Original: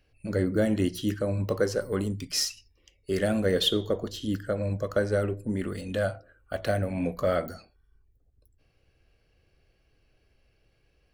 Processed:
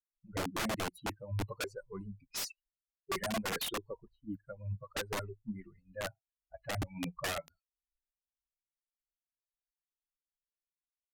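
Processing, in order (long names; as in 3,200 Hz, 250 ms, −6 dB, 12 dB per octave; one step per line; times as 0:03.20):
spectral dynamics exaggerated over time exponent 3
wrap-around overflow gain 27 dB
low-pass that shuts in the quiet parts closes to 510 Hz, open at −32.5 dBFS
level −3 dB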